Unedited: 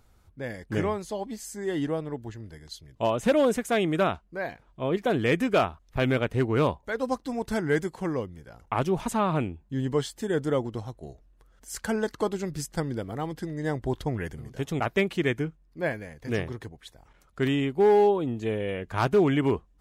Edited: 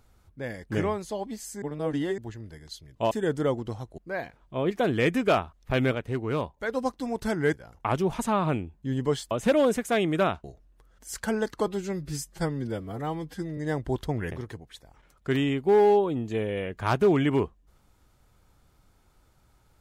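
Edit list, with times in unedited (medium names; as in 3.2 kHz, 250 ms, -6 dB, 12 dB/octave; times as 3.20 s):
1.62–2.18 s: reverse
3.11–4.24 s: swap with 10.18–11.05 s
6.21–6.86 s: gain -5 dB
7.79–8.40 s: delete
12.28–13.55 s: stretch 1.5×
14.29–16.43 s: delete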